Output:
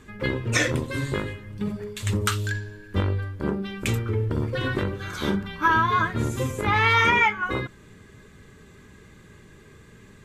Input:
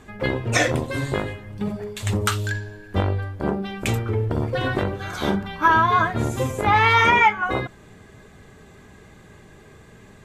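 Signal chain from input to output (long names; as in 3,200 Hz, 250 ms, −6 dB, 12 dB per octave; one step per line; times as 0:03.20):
parametric band 720 Hz −12.5 dB 0.51 octaves
level −1.5 dB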